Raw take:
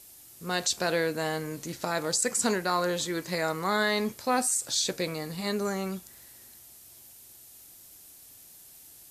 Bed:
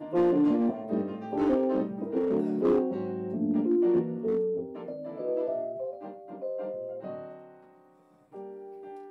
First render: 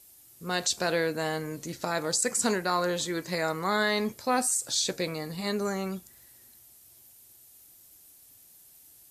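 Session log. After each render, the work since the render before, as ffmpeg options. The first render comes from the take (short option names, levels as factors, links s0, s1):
-af "afftdn=nr=6:nf=-52"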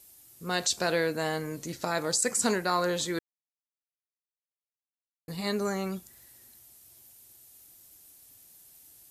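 -filter_complex "[0:a]asplit=3[s0][s1][s2];[s0]atrim=end=3.19,asetpts=PTS-STARTPTS,afade=t=out:st=3.186:d=0.004:c=hsin[s3];[s1]atrim=start=3.19:end=5.28,asetpts=PTS-STARTPTS,volume=0[s4];[s2]atrim=start=5.28,asetpts=PTS-STARTPTS,afade=t=in:d=0.004:c=hsin[s5];[s3][s4][s5]concat=n=3:v=0:a=1"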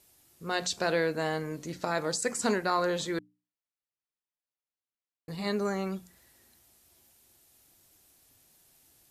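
-af "lowpass=f=3700:p=1,bandreject=f=60:t=h:w=6,bandreject=f=120:t=h:w=6,bandreject=f=180:t=h:w=6,bandreject=f=240:t=h:w=6,bandreject=f=300:t=h:w=6"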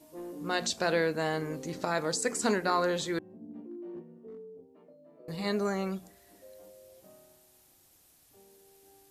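-filter_complex "[1:a]volume=0.119[s0];[0:a][s0]amix=inputs=2:normalize=0"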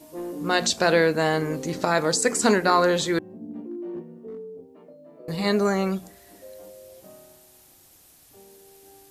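-af "volume=2.66"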